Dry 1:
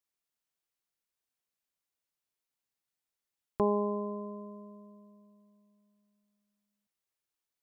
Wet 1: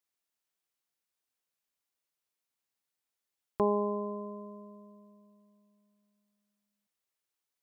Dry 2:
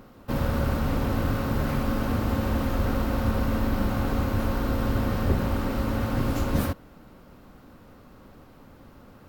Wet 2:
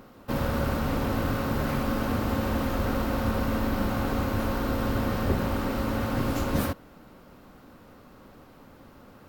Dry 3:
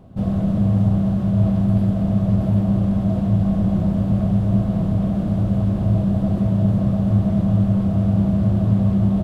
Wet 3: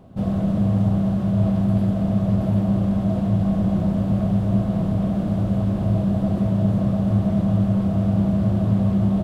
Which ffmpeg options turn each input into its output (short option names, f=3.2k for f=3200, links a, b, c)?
-af "lowshelf=f=150:g=-6,volume=1dB"